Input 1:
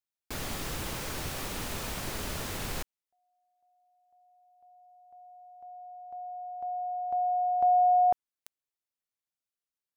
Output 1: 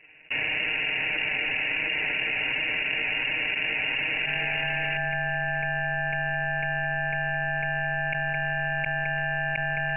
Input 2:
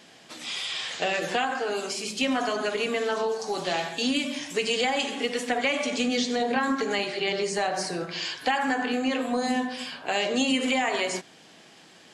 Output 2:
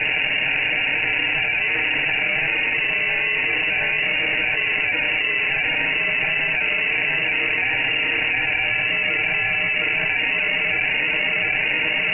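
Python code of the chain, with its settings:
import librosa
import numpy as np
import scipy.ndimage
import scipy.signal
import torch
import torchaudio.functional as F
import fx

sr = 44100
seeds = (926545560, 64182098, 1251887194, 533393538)

y = fx.octave_divider(x, sr, octaves=1, level_db=-5.0)
y = scipy.signal.sosfilt(scipy.signal.butter(2, 250.0, 'highpass', fs=sr, output='sos'), y)
y = y * np.sin(2.0 * np.pi * 330.0 * np.arange(len(y)) / sr)
y = fx.peak_eq(y, sr, hz=700.0, db=-4.0, octaves=0.77)
y = fx.sample_hold(y, sr, seeds[0], rate_hz=1600.0, jitter_pct=0)
y = y + 0.98 * np.pad(y, (int(6.4 * sr / 1000.0), 0))[:len(y)]
y = fx.echo_feedback(y, sr, ms=714, feedback_pct=26, wet_db=-4.5)
y = fx.freq_invert(y, sr, carrier_hz=2800)
y = fx.env_flatten(y, sr, amount_pct=100)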